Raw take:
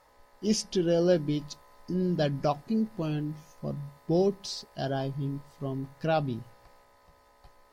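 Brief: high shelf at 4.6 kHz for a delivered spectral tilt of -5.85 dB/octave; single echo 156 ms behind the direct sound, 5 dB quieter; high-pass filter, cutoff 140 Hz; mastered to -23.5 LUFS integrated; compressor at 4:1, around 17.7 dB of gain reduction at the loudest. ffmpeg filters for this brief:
-af "highpass=140,highshelf=f=4600:g=-4,acompressor=threshold=0.00708:ratio=4,aecho=1:1:156:0.562,volume=10.6"

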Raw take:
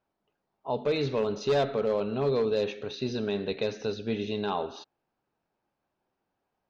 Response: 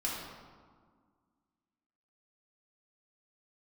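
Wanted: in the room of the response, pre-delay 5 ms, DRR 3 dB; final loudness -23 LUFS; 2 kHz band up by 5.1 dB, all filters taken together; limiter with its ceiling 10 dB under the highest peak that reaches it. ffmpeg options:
-filter_complex "[0:a]equalizer=f=2000:t=o:g=7,alimiter=level_in=1.33:limit=0.0631:level=0:latency=1,volume=0.75,asplit=2[s0][s1];[1:a]atrim=start_sample=2205,adelay=5[s2];[s1][s2]afir=irnorm=-1:irlink=0,volume=0.398[s3];[s0][s3]amix=inputs=2:normalize=0,volume=3.35"

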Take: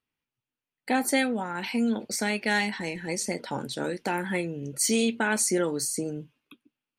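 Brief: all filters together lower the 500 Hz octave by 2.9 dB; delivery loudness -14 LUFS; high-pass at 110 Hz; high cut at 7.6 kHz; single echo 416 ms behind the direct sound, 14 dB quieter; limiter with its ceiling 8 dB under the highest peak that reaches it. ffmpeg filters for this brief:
-af "highpass=110,lowpass=7600,equalizer=f=500:t=o:g=-3.5,alimiter=limit=0.0891:level=0:latency=1,aecho=1:1:416:0.2,volume=7.5"

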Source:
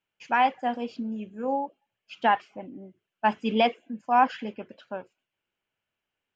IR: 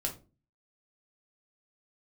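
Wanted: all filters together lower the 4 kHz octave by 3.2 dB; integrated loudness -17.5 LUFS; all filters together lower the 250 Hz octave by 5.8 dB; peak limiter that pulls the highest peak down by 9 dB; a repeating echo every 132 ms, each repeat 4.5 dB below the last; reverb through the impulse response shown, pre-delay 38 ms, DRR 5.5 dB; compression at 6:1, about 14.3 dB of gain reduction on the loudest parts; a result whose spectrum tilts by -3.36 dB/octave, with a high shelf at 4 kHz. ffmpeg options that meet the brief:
-filter_complex "[0:a]equalizer=f=250:t=o:g=-6.5,highshelf=f=4000:g=5.5,equalizer=f=4000:t=o:g=-8,acompressor=threshold=0.0224:ratio=6,alimiter=level_in=2:limit=0.0631:level=0:latency=1,volume=0.501,aecho=1:1:132|264|396|528|660|792|924|1056|1188:0.596|0.357|0.214|0.129|0.0772|0.0463|0.0278|0.0167|0.01,asplit=2[s0][s1];[1:a]atrim=start_sample=2205,adelay=38[s2];[s1][s2]afir=irnorm=-1:irlink=0,volume=0.398[s3];[s0][s3]amix=inputs=2:normalize=0,volume=13.3"

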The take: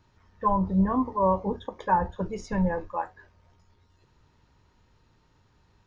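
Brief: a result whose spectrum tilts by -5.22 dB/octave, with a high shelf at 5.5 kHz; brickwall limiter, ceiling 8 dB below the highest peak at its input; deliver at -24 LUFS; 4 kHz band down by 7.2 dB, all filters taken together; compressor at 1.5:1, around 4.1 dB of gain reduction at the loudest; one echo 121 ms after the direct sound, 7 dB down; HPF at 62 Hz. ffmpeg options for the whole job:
-af "highpass=62,equalizer=f=4000:t=o:g=-7.5,highshelf=f=5500:g=-4.5,acompressor=threshold=0.0355:ratio=1.5,alimiter=limit=0.0631:level=0:latency=1,aecho=1:1:121:0.447,volume=2.99"

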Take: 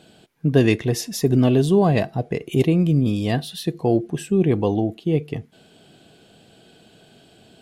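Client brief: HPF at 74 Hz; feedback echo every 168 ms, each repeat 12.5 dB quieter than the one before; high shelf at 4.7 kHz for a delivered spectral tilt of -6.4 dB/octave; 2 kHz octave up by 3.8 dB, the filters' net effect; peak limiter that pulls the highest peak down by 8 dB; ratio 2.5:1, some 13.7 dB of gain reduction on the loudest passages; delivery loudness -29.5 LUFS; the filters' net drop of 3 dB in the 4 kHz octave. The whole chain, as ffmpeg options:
-af "highpass=74,equalizer=f=2000:t=o:g=7,equalizer=f=4000:t=o:g=-3.5,highshelf=f=4700:g=-6.5,acompressor=threshold=0.0224:ratio=2.5,alimiter=limit=0.0631:level=0:latency=1,aecho=1:1:168|336|504:0.237|0.0569|0.0137,volume=1.88"

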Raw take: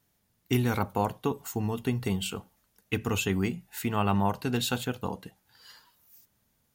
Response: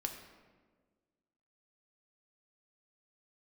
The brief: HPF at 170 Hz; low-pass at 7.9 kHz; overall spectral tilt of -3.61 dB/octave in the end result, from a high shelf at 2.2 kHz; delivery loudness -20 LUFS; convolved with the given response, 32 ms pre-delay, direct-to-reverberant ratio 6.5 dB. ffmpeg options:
-filter_complex "[0:a]highpass=170,lowpass=7900,highshelf=f=2200:g=8.5,asplit=2[s0][s1];[1:a]atrim=start_sample=2205,adelay=32[s2];[s1][s2]afir=irnorm=-1:irlink=0,volume=0.473[s3];[s0][s3]amix=inputs=2:normalize=0,volume=2.66"

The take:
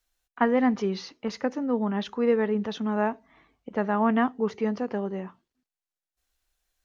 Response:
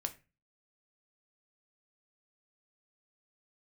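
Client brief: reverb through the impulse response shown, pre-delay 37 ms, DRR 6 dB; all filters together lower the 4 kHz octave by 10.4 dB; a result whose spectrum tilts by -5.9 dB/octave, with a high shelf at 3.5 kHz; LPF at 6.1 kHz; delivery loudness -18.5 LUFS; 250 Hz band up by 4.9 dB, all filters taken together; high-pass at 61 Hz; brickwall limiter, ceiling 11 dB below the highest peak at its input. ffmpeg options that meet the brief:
-filter_complex "[0:a]highpass=61,lowpass=6100,equalizer=f=250:t=o:g=5.5,highshelf=f=3500:g=-6.5,equalizer=f=4000:t=o:g=-8.5,alimiter=limit=0.1:level=0:latency=1,asplit=2[s0][s1];[1:a]atrim=start_sample=2205,adelay=37[s2];[s1][s2]afir=irnorm=-1:irlink=0,volume=0.501[s3];[s0][s3]amix=inputs=2:normalize=0,volume=2.99"

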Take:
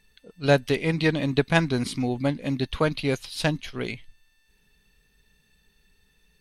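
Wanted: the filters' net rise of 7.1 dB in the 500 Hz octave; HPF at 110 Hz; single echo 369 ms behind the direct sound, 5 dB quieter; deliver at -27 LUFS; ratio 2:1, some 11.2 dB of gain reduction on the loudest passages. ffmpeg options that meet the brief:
-af "highpass=110,equalizer=f=500:t=o:g=8.5,acompressor=threshold=0.0355:ratio=2,aecho=1:1:369:0.562,volume=1.19"

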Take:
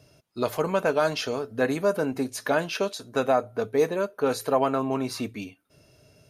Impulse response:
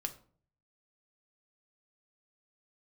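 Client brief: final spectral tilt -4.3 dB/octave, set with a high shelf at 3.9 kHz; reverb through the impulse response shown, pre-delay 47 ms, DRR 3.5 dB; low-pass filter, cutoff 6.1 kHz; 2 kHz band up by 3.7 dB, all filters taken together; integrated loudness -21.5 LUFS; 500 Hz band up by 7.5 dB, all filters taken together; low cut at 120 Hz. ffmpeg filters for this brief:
-filter_complex "[0:a]highpass=120,lowpass=6100,equalizer=f=500:t=o:g=9,equalizer=f=2000:t=o:g=6.5,highshelf=f=3900:g=-8,asplit=2[s0][s1];[1:a]atrim=start_sample=2205,adelay=47[s2];[s1][s2]afir=irnorm=-1:irlink=0,volume=0.708[s3];[s0][s3]amix=inputs=2:normalize=0,volume=0.708"

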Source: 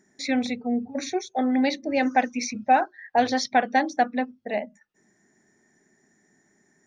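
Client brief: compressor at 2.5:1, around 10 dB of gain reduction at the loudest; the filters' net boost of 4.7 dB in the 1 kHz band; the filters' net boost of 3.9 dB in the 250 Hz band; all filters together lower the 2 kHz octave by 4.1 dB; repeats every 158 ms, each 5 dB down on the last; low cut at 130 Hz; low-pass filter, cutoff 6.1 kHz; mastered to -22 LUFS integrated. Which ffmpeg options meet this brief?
-af "highpass=130,lowpass=6100,equalizer=f=250:t=o:g=4,equalizer=f=1000:t=o:g=8.5,equalizer=f=2000:t=o:g=-8.5,acompressor=threshold=0.0501:ratio=2.5,aecho=1:1:158|316|474|632|790|948|1106:0.562|0.315|0.176|0.0988|0.0553|0.031|0.0173,volume=1.78"

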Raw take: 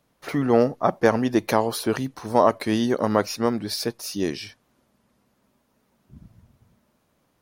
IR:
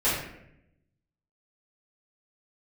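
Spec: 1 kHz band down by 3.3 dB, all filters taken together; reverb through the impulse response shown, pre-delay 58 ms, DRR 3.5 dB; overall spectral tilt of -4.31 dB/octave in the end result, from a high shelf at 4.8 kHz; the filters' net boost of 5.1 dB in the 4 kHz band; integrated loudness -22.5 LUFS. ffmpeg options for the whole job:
-filter_complex "[0:a]equalizer=f=1000:t=o:g=-4.5,equalizer=f=4000:t=o:g=9,highshelf=f=4800:g=-4.5,asplit=2[s0][s1];[1:a]atrim=start_sample=2205,adelay=58[s2];[s1][s2]afir=irnorm=-1:irlink=0,volume=0.141[s3];[s0][s3]amix=inputs=2:normalize=0,volume=0.944"

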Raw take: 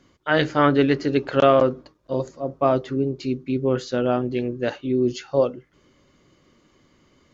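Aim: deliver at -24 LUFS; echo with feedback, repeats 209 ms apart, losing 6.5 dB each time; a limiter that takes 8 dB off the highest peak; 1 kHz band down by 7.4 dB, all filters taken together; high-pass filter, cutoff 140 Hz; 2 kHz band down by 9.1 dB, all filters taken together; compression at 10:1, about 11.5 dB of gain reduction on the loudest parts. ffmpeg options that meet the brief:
-af "highpass=140,equalizer=f=1000:t=o:g=-8.5,equalizer=f=2000:t=o:g=-9,acompressor=threshold=0.0501:ratio=10,alimiter=limit=0.0631:level=0:latency=1,aecho=1:1:209|418|627|836|1045|1254:0.473|0.222|0.105|0.0491|0.0231|0.0109,volume=3.16"

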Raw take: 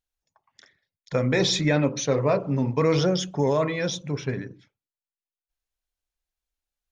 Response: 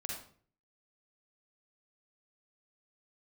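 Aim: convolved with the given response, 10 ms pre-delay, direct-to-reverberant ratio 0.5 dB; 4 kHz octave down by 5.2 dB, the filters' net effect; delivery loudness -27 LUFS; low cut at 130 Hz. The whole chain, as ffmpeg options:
-filter_complex "[0:a]highpass=130,equalizer=f=4000:t=o:g=-6.5,asplit=2[s0][s1];[1:a]atrim=start_sample=2205,adelay=10[s2];[s1][s2]afir=irnorm=-1:irlink=0,volume=0.944[s3];[s0][s3]amix=inputs=2:normalize=0,volume=0.596"

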